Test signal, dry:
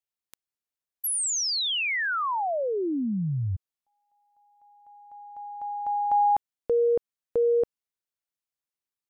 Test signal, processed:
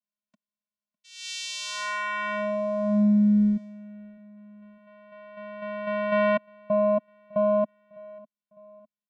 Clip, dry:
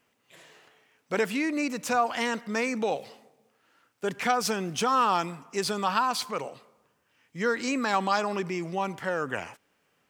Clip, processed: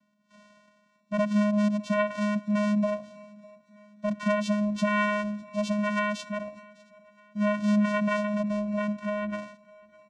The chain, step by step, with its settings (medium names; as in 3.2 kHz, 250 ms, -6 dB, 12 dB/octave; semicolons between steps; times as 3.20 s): vocoder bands 4, square 208 Hz; on a send: feedback delay 604 ms, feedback 51%, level -24 dB; on the sum: trim +2 dB